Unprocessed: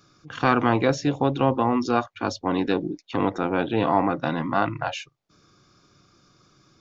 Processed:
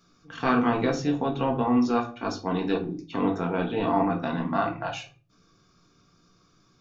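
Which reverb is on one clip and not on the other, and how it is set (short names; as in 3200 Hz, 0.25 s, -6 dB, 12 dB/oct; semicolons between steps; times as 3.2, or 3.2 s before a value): shoebox room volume 220 m³, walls furnished, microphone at 1.6 m; gain -6.5 dB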